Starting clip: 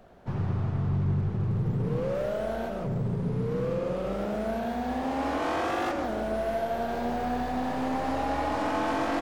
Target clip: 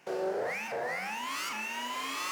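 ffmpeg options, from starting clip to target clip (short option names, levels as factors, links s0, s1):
-af "highpass=44,equalizer=f=880:w=2.4:g=-8.5,asetrate=175077,aresample=44100,volume=0.562"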